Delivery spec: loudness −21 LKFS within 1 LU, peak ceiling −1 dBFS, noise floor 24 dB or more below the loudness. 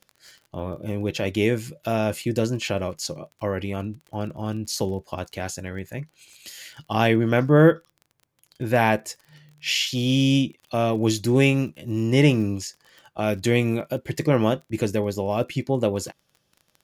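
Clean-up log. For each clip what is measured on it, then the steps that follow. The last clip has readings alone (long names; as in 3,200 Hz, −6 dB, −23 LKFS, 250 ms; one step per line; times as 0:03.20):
crackle rate 26 per second; integrated loudness −23.5 LKFS; sample peak −5.5 dBFS; target loudness −21.0 LKFS
→ click removal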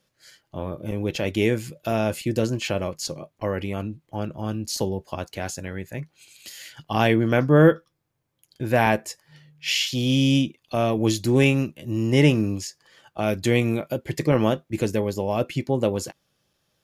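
crackle rate 0.059 per second; integrated loudness −23.5 LKFS; sample peak −5.5 dBFS; target loudness −21.0 LKFS
→ level +2.5 dB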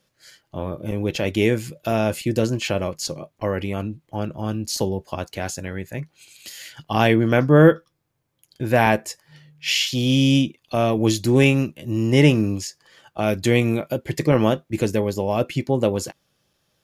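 integrated loudness −21.0 LKFS; sample peak −3.0 dBFS; background noise floor −71 dBFS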